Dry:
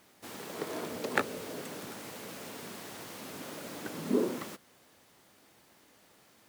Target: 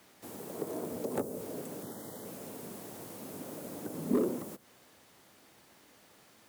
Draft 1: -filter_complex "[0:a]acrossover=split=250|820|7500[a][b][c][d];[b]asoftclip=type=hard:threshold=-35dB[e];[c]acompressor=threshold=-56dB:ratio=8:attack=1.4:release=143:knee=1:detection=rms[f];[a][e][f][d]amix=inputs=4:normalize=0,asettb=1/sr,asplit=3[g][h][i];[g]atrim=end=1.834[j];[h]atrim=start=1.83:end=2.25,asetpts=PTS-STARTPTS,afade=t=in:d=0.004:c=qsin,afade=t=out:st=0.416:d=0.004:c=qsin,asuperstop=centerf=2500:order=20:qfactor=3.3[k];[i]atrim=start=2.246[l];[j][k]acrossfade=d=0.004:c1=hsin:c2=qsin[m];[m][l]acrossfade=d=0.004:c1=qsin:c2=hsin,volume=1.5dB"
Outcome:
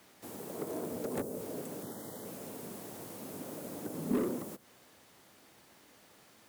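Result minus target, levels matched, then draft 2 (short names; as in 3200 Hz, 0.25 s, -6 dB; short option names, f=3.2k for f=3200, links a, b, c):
hard clip: distortion +7 dB
-filter_complex "[0:a]acrossover=split=250|820|7500[a][b][c][d];[b]asoftclip=type=hard:threshold=-28dB[e];[c]acompressor=threshold=-56dB:ratio=8:attack=1.4:release=143:knee=1:detection=rms[f];[a][e][f][d]amix=inputs=4:normalize=0,asettb=1/sr,asplit=3[g][h][i];[g]atrim=end=1.834[j];[h]atrim=start=1.83:end=2.25,asetpts=PTS-STARTPTS,afade=t=in:d=0.004:c=qsin,afade=t=out:st=0.416:d=0.004:c=qsin,asuperstop=centerf=2500:order=20:qfactor=3.3[k];[i]atrim=start=2.246[l];[j][k]acrossfade=d=0.004:c1=hsin:c2=qsin[m];[m][l]acrossfade=d=0.004:c1=qsin:c2=hsin,volume=1.5dB"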